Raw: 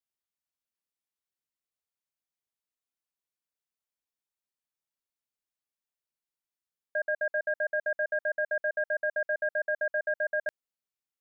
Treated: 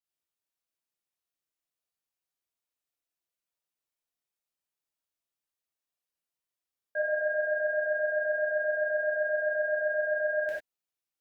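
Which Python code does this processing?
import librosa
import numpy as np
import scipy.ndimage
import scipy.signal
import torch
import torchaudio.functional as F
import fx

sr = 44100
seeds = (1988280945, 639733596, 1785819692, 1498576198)

y = fx.rev_gated(x, sr, seeds[0], gate_ms=120, shape='flat', drr_db=-6.5)
y = F.gain(torch.from_numpy(y), -6.5).numpy()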